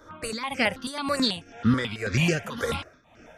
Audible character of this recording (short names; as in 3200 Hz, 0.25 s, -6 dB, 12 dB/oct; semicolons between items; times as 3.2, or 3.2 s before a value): tremolo triangle 1.9 Hz, depth 85%; notches that jump at a steady rate 9.2 Hz 720–3700 Hz